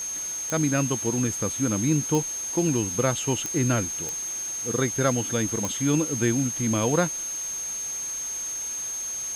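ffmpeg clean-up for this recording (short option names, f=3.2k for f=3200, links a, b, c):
-af "adeclick=t=4,bandreject=f=6.4k:w=30,afwtdn=0.0089"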